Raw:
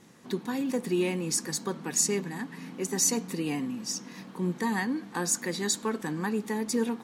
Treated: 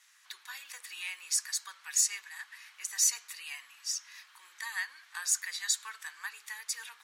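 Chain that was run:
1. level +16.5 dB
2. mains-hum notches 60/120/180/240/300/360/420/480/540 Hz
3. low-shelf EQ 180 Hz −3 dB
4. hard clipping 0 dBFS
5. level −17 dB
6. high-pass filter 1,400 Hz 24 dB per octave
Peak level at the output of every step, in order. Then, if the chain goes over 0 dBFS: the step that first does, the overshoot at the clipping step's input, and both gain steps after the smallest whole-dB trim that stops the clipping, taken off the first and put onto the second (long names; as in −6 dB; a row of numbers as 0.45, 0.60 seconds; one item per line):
+5.0, +5.0, +5.0, 0.0, −17.0, −14.5 dBFS
step 1, 5.0 dB
step 1 +11.5 dB, step 5 −12 dB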